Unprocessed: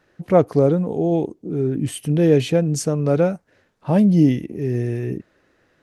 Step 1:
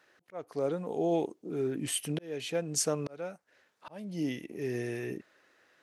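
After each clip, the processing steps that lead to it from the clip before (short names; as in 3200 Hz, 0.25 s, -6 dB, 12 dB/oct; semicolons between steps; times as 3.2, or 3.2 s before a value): HPF 1000 Hz 6 dB/oct; auto swell 0.74 s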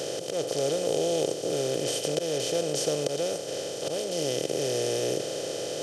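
per-bin compression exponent 0.2; ten-band EQ 125 Hz +3 dB, 250 Hz -9 dB, 500 Hz +8 dB, 1000 Hz -7 dB, 2000 Hz -4 dB, 4000 Hz +8 dB, 8000 Hz -5 dB; gain -4.5 dB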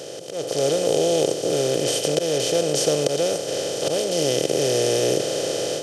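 AGC gain up to 11.5 dB; gain -3 dB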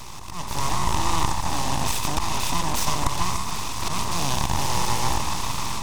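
delay with a stepping band-pass 0.148 s, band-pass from 500 Hz, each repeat 1.4 oct, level -4 dB; full-wave rectifier; gain -1 dB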